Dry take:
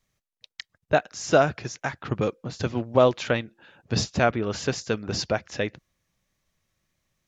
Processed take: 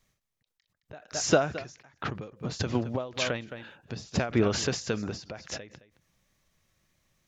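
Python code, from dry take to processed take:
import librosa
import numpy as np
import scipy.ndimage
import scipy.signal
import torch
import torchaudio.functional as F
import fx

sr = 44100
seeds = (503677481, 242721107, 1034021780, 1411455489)

y = x + 10.0 ** (-21.0 / 20.0) * np.pad(x, (int(217 * sr / 1000.0), 0))[:len(x)]
y = fx.end_taper(y, sr, db_per_s=120.0)
y = F.gain(torch.from_numpy(y), 4.0).numpy()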